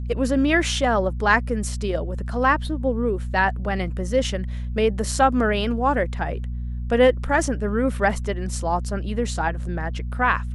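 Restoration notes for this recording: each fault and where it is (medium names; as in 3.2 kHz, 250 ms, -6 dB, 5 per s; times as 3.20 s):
hum 60 Hz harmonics 4 -28 dBFS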